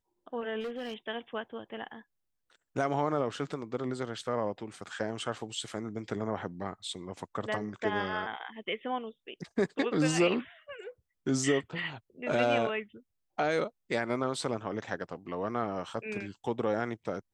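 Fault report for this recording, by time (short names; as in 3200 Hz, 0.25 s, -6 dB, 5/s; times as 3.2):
0.6–0.94 clipped -33 dBFS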